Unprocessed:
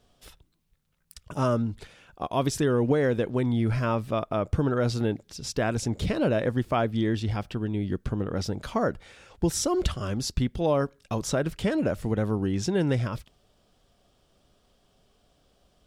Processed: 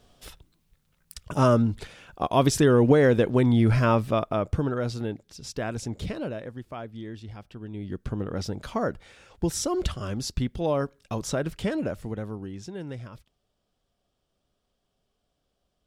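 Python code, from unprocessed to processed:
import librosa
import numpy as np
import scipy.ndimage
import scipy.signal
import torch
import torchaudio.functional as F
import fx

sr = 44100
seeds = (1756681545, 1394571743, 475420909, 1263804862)

y = fx.gain(x, sr, db=fx.line((3.96, 5.0), (4.95, -4.5), (6.06, -4.5), (6.49, -12.5), (7.45, -12.5), (8.12, -1.5), (11.68, -1.5), (12.64, -12.0)))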